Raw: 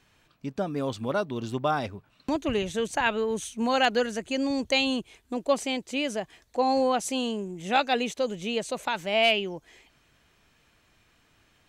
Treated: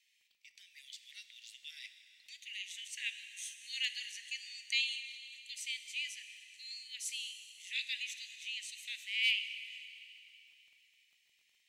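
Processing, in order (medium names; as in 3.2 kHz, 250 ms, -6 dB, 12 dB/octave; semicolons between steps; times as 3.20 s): steep high-pass 1.9 kHz 96 dB/octave; crackle 19 per s -53 dBFS; plate-style reverb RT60 3.1 s, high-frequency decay 1×, DRR 8 dB; trim -6.5 dB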